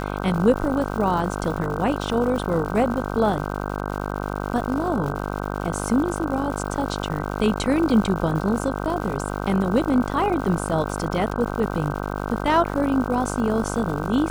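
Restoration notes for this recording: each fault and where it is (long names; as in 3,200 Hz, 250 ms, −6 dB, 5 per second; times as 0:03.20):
mains buzz 50 Hz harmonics 31 −28 dBFS
surface crackle 220 per second −31 dBFS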